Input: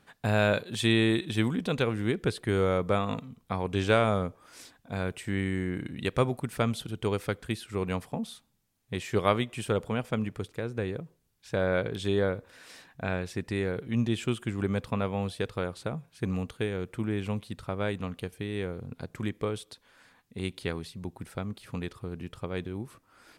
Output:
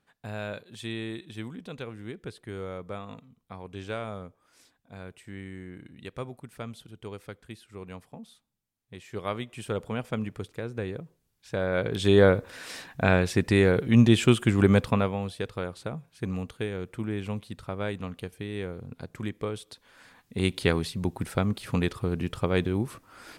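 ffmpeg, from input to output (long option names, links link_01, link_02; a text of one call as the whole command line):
ffmpeg -i in.wav -af "volume=19.5dB,afade=type=in:start_time=9.04:duration=0.99:silence=0.316228,afade=type=in:start_time=11.72:duration=0.56:silence=0.298538,afade=type=out:start_time=14.74:duration=0.45:silence=0.298538,afade=type=in:start_time=19.6:duration=1.06:silence=0.316228" out.wav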